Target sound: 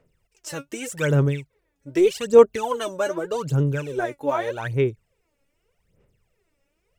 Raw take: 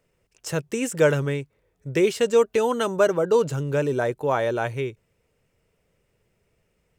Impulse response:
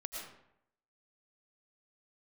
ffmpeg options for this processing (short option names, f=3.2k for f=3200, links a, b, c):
-af "aphaser=in_gain=1:out_gain=1:delay=3.6:decay=0.78:speed=0.83:type=sinusoidal,volume=-5.5dB"